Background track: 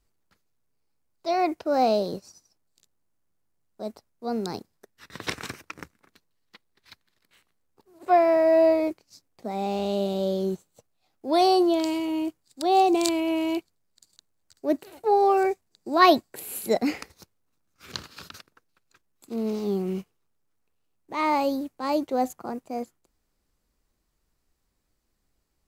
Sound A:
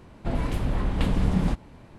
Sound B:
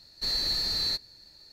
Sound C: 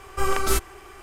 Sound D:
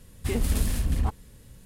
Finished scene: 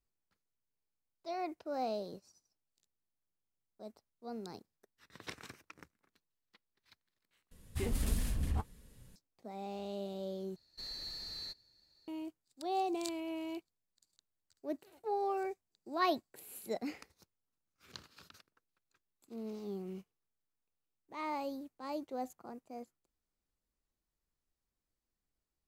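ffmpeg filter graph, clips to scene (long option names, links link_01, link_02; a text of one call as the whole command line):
ffmpeg -i bed.wav -i cue0.wav -i cue1.wav -i cue2.wav -i cue3.wav -filter_complex "[0:a]volume=-15dB[link_01];[4:a]flanger=delay=4.1:depth=6.4:regen=-45:speed=1.5:shape=sinusoidal[link_02];[link_01]asplit=3[link_03][link_04][link_05];[link_03]atrim=end=7.514[link_06];[link_02]atrim=end=1.65,asetpts=PTS-STARTPTS,volume=-4.5dB[link_07];[link_04]atrim=start=9.156:end=10.564[link_08];[2:a]atrim=end=1.52,asetpts=PTS-STARTPTS,volume=-16dB[link_09];[link_05]atrim=start=12.076[link_10];[link_06][link_07]acrossfade=duration=0.004:curve1=hsin:curve2=hsin[link_11];[link_11][link_08]acrossfade=duration=0.004:curve1=hsin:curve2=hsin[link_12];[link_12][link_09]acrossfade=duration=0.004:curve1=hsin:curve2=hsin[link_13];[link_13][link_10]acrossfade=duration=0.004:curve1=hsin:curve2=hsin" out.wav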